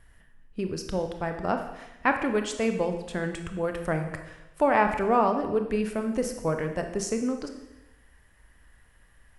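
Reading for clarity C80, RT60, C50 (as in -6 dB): 10.0 dB, 0.95 s, 7.5 dB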